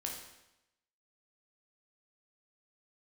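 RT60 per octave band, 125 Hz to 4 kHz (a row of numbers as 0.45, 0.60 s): 0.90, 0.90, 0.90, 0.90, 0.90, 0.85 s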